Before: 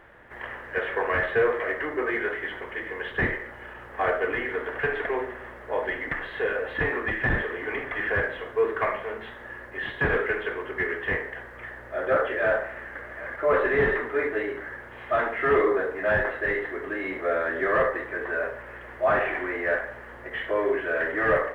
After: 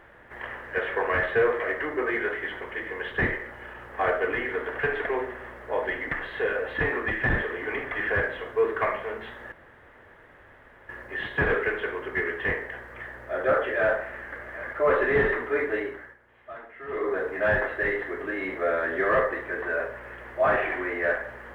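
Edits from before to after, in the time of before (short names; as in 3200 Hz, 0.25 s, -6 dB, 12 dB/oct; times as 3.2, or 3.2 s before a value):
9.52 insert room tone 1.37 s
14.42–15.89 dip -17 dB, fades 0.38 s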